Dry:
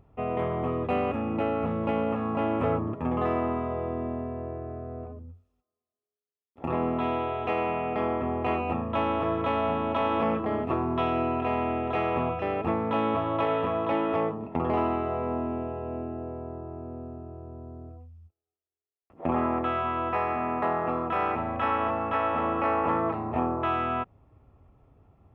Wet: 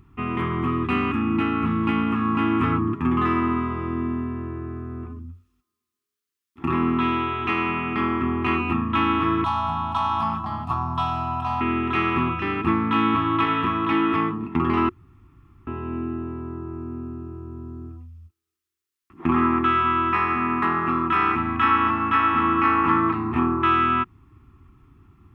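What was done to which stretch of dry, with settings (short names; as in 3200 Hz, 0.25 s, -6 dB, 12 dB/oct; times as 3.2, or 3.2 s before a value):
9.44–11.61 EQ curve 150 Hz 0 dB, 410 Hz -26 dB, 720 Hz +11 dB, 2100 Hz -18 dB, 4600 Hz +5 dB
14.89–15.67 room tone
whole clip: EQ curve 130 Hz 0 dB, 360 Hz +3 dB, 550 Hz -29 dB, 1100 Hz +4 dB; gain +6 dB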